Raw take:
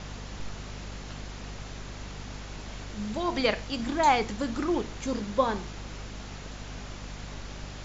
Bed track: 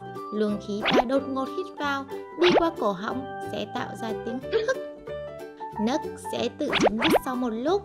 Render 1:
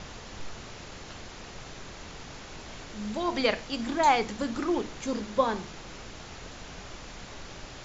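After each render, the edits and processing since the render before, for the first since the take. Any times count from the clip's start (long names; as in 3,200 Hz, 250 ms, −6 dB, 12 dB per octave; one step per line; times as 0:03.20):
mains-hum notches 50/100/150/200/250/300 Hz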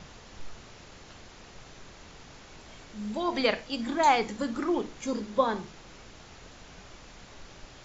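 noise reduction from a noise print 6 dB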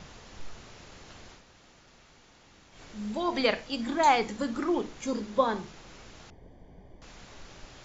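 0:01.40–0:02.75: fill with room tone, crossfade 0.16 s
0:06.30–0:07.02: moving average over 33 samples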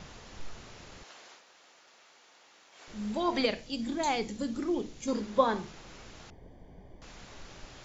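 0:01.03–0:02.88: high-pass filter 510 Hz
0:03.45–0:05.08: parametric band 1,200 Hz −11.5 dB 2.1 octaves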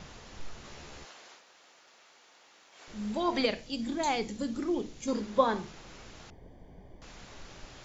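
0:00.63–0:01.10: double-tracking delay 14 ms −2 dB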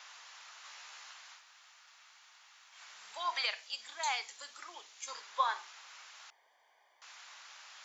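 high-pass filter 950 Hz 24 dB per octave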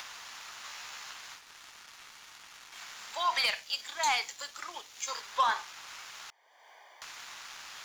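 leveller curve on the samples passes 2
upward compression, threshold −40 dBFS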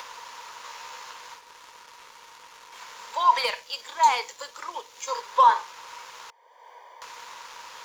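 hollow resonant body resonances 490/950 Hz, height 17 dB, ringing for 35 ms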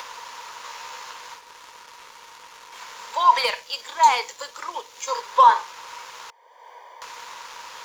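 level +3.5 dB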